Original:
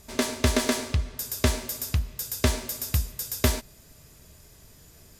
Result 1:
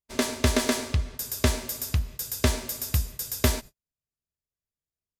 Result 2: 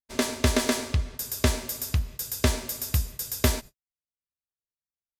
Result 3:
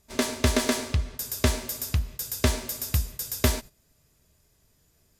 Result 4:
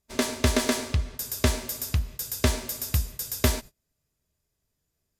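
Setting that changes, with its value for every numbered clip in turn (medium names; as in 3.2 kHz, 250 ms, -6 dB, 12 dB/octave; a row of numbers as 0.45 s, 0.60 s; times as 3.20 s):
gate, range: -45 dB, -57 dB, -13 dB, -27 dB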